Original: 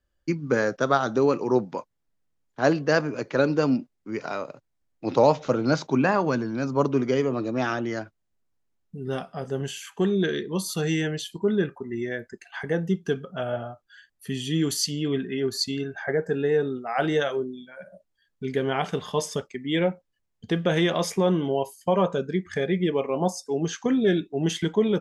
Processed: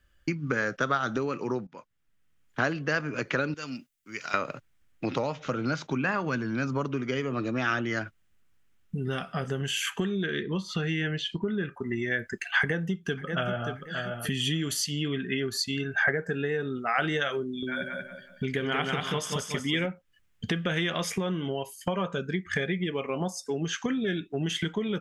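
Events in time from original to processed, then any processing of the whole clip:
1.67–2.61 fade in, from -18.5 dB
3.54–4.34 pre-emphasis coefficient 0.9
10.24–11.64 air absorption 180 m
12.59–13.68 echo throw 0.58 s, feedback 20%, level -12.5 dB
17.44–19.86 feedback echo 0.185 s, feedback 32%, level -4 dB
whole clip: tone controls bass +6 dB, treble +5 dB; compressor 6:1, threshold -32 dBFS; band shelf 2000 Hz +9.5 dB; gain +4 dB

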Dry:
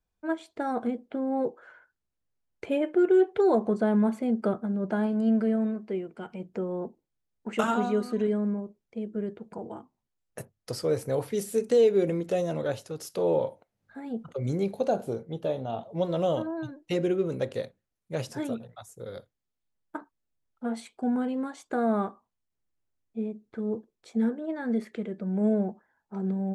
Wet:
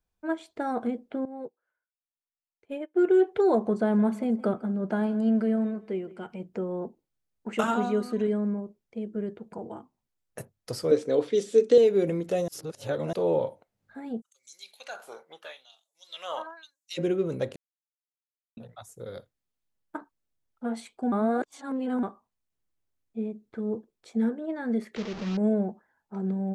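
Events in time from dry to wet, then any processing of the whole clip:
1.25–2.99 upward expander 2.5:1, over -40 dBFS
3.6–6.27 feedback echo 0.166 s, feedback 28%, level -19 dB
10.91–11.78 speaker cabinet 240–7400 Hz, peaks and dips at 290 Hz +10 dB, 450 Hz +7 dB, 860 Hz -6 dB, 3500 Hz +9 dB
12.48–13.13 reverse
14.2–16.97 LFO high-pass sine 0.37 Hz -> 1.5 Hz 960–7500 Hz
17.56–18.57 mute
21.12–22.03 reverse
24.96–25.37 delta modulation 32 kbps, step -32.5 dBFS

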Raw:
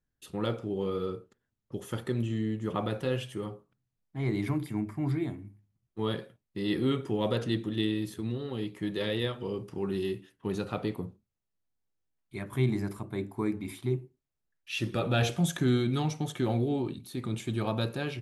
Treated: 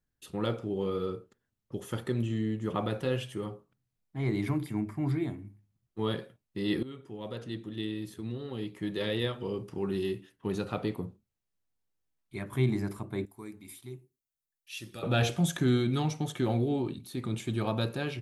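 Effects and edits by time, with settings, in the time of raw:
6.83–9.22 fade in, from -17.5 dB
13.25–15.03 pre-emphasis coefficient 0.8

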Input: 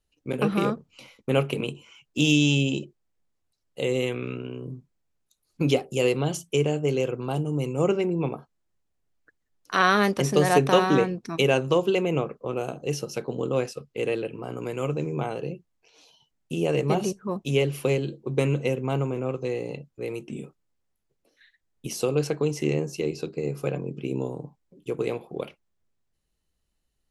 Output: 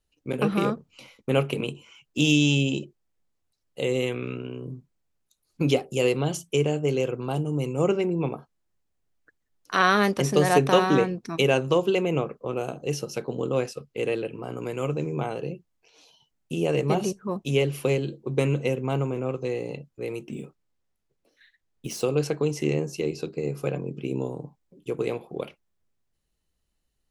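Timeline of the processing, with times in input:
20.19–22.06 median filter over 3 samples

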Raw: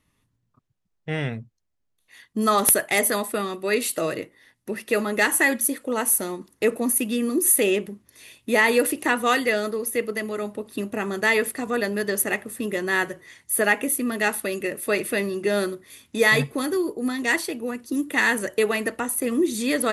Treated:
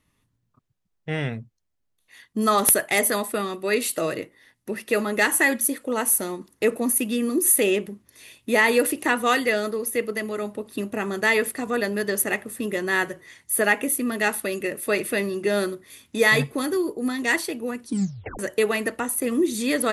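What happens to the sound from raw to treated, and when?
17.85 tape stop 0.54 s

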